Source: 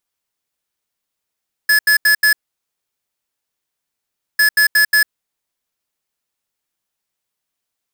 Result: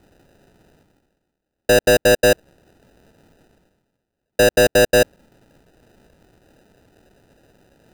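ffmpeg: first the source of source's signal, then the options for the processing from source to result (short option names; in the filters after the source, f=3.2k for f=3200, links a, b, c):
-f lavfi -i "aevalsrc='0.266*(2*lt(mod(1710*t,1),0.5)-1)*clip(min(mod(mod(t,2.7),0.18),0.1-mod(mod(t,2.7),0.18))/0.005,0,1)*lt(mod(t,2.7),0.72)':d=5.4:s=44100"
-af "areverse,acompressor=mode=upward:threshold=-34dB:ratio=2.5,areverse,acrusher=samples=40:mix=1:aa=0.000001"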